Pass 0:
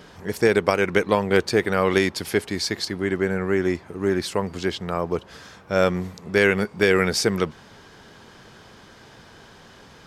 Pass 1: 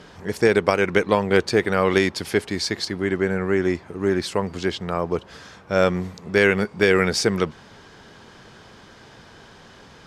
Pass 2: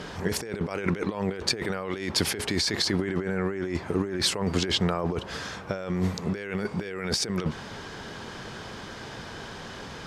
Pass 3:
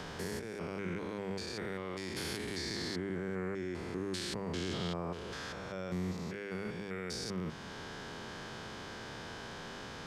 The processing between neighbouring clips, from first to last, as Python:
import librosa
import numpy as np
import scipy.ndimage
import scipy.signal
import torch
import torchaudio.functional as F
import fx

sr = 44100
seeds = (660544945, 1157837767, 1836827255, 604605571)

y1 = scipy.signal.sosfilt(scipy.signal.bessel(2, 9500.0, 'lowpass', norm='mag', fs=sr, output='sos'), x)
y1 = F.gain(torch.from_numpy(y1), 1.0).numpy()
y2 = fx.over_compress(y1, sr, threshold_db=-29.0, ratio=-1.0)
y3 = fx.spec_steps(y2, sr, hold_ms=200)
y3 = fx.hum_notches(y3, sr, base_hz=50, count=4)
y3 = fx.band_squash(y3, sr, depth_pct=40)
y3 = F.gain(torch.from_numpy(y3), -7.5).numpy()